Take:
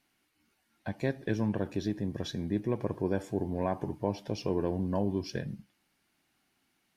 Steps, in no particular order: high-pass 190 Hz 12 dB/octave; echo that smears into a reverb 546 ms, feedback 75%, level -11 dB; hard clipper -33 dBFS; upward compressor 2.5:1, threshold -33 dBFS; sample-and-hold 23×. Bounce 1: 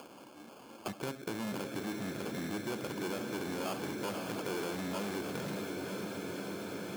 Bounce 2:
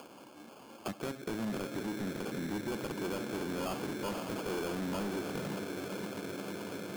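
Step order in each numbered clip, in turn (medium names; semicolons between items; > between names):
sample-and-hold > echo that smears into a reverb > hard clipper > high-pass > upward compressor; echo that smears into a reverb > sample-and-hold > high-pass > hard clipper > upward compressor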